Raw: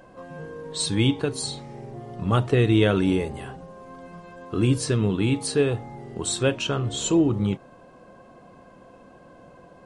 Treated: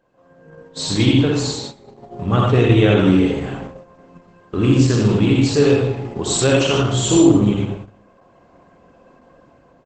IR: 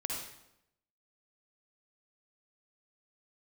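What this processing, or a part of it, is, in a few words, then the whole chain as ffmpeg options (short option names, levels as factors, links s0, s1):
speakerphone in a meeting room: -filter_complex "[1:a]atrim=start_sample=2205[s0];[0:a][s0]afir=irnorm=-1:irlink=0,asplit=2[s1][s2];[s2]adelay=370,highpass=300,lowpass=3400,asoftclip=type=hard:threshold=0.188,volume=0.0631[s3];[s1][s3]amix=inputs=2:normalize=0,dynaudnorm=f=120:g=11:m=3.35,agate=range=0.224:threshold=0.0355:ratio=16:detection=peak" -ar 48000 -c:a libopus -b:a 12k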